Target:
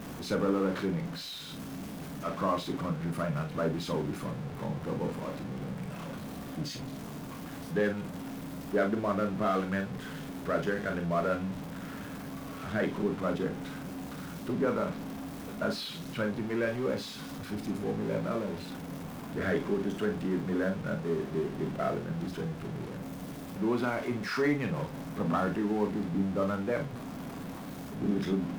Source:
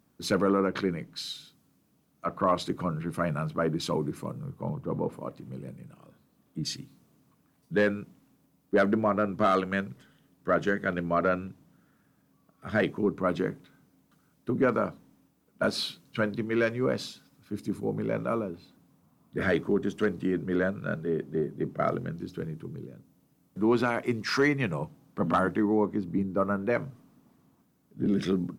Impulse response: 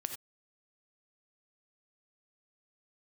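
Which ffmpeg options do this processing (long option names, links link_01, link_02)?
-filter_complex "[0:a]aeval=exprs='val(0)+0.5*0.0376*sgn(val(0))':channel_layout=same,highshelf=frequency=4100:gain=-9.5[link_01];[1:a]atrim=start_sample=2205,asetrate=83790,aresample=44100[link_02];[link_01][link_02]afir=irnorm=-1:irlink=0"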